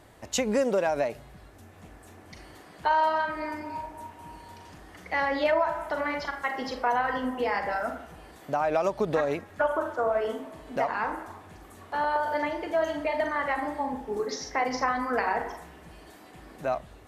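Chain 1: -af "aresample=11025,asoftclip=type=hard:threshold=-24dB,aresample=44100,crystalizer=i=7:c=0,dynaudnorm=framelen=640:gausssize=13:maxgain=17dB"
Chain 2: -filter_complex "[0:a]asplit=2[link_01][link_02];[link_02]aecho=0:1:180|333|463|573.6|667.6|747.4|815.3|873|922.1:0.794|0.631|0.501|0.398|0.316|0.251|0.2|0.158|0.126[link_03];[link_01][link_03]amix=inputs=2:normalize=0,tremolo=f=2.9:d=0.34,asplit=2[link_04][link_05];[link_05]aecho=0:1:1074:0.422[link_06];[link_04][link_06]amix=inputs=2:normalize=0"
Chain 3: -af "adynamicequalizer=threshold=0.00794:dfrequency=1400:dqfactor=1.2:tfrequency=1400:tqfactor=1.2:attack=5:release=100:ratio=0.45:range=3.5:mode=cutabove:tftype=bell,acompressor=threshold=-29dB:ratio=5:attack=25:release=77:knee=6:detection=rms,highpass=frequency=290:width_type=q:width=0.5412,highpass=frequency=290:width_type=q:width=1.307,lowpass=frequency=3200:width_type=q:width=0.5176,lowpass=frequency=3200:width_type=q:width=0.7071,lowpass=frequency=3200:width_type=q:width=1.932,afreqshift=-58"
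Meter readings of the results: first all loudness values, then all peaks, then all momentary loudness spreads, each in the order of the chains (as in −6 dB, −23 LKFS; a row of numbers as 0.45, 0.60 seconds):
−18.5, −26.0, −34.0 LKFS; −1.5, −10.5, −19.0 dBFS; 18, 8, 19 LU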